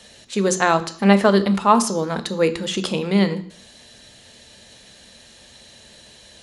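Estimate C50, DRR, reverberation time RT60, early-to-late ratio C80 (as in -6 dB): 15.0 dB, 10.0 dB, 0.55 s, 18.5 dB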